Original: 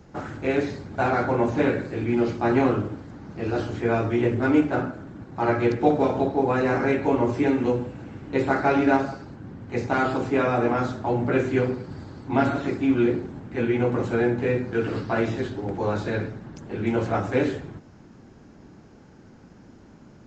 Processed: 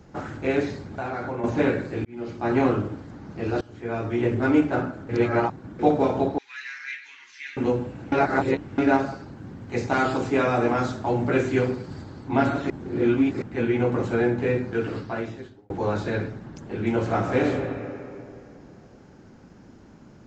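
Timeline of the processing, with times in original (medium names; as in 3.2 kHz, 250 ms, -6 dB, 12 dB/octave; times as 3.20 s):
0.80–1.44 s: compression 3:1, threshold -29 dBFS
2.05–2.64 s: fade in linear
3.61–4.34 s: fade in, from -22 dB
5.09–5.79 s: reverse
6.38–7.57 s: elliptic band-pass 1.8–6.3 kHz, stop band 50 dB
8.12–8.78 s: reverse
9.36–12.02 s: treble shelf 4.3 kHz +7 dB
12.70–13.42 s: reverse
14.64–15.70 s: fade out
17.00–17.45 s: reverb throw, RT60 2.7 s, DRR 2.5 dB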